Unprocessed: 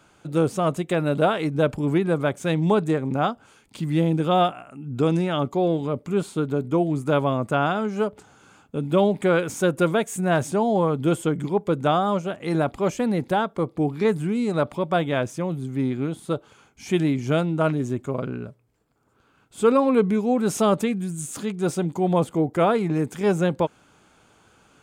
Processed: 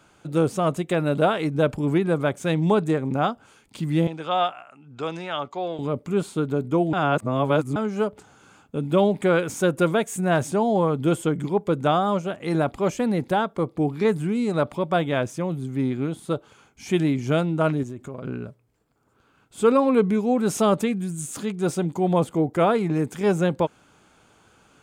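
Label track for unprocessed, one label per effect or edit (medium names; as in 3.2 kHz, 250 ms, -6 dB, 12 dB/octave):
4.070000	5.790000	three-band isolator lows -15 dB, under 580 Hz, highs -22 dB, over 7.1 kHz
6.930000	7.760000	reverse
17.830000	18.250000	compression, threshold -31 dBFS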